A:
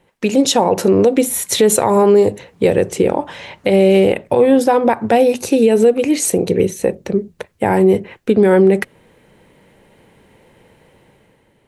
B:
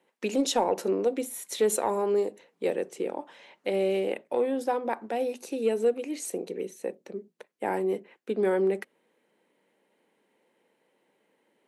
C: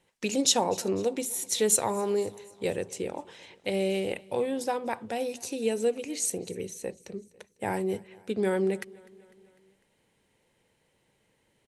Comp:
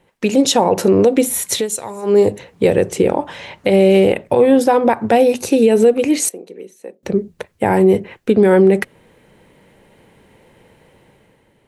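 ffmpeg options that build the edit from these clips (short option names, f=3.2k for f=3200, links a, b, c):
-filter_complex "[0:a]asplit=3[a][b][c];[a]atrim=end=1.67[d];[2:a]atrim=start=1.51:end=2.18[e];[b]atrim=start=2.02:end=6.292[f];[1:a]atrim=start=6.288:end=7.032[g];[c]atrim=start=7.028[h];[d][e]acrossfade=d=0.16:c1=tri:c2=tri[i];[i][f]acrossfade=d=0.16:c1=tri:c2=tri[j];[j][g]acrossfade=d=0.004:c1=hsin:c2=hsin[k];[k][h]acrossfade=d=0.004:c1=hsin:c2=hsin"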